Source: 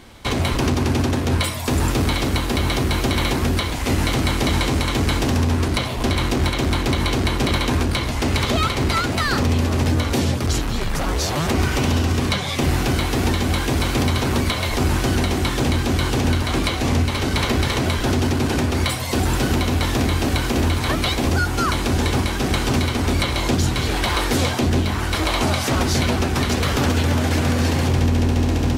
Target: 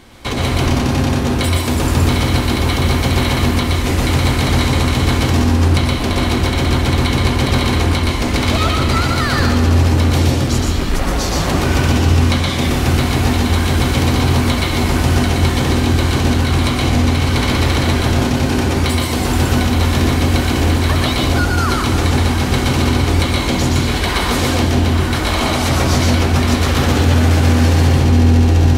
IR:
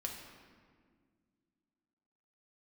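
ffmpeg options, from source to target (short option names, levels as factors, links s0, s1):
-filter_complex "[0:a]asplit=2[s0][s1];[1:a]atrim=start_sample=2205,adelay=120[s2];[s1][s2]afir=irnorm=-1:irlink=0,volume=1.06[s3];[s0][s3]amix=inputs=2:normalize=0,volume=1.12"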